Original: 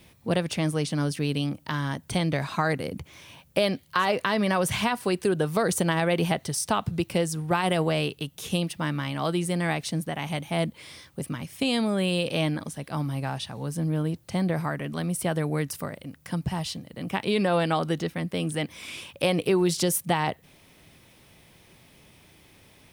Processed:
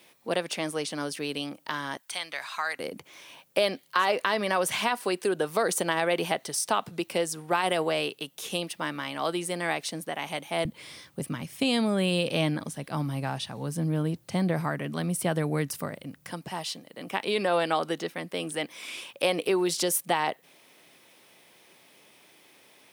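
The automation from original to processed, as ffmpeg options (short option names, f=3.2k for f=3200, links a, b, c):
-af "asetnsamples=n=441:p=0,asendcmd='1.97 highpass f 1200;2.79 highpass f 340;10.65 highpass f 120;16.32 highpass f 340',highpass=380"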